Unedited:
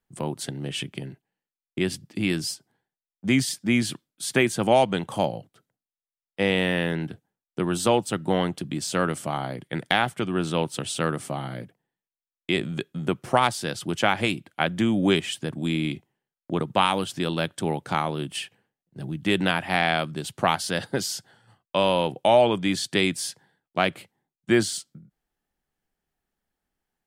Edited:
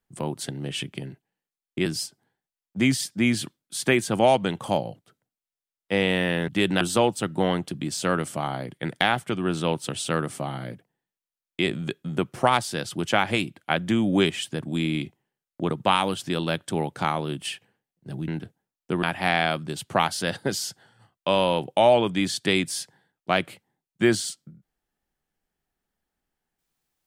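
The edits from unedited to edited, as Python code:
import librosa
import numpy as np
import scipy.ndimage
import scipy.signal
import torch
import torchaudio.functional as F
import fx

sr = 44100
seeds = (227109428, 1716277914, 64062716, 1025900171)

y = fx.edit(x, sr, fx.cut(start_s=1.86, length_s=0.48),
    fx.swap(start_s=6.96, length_s=0.75, other_s=19.18, other_length_s=0.33), tone=tone)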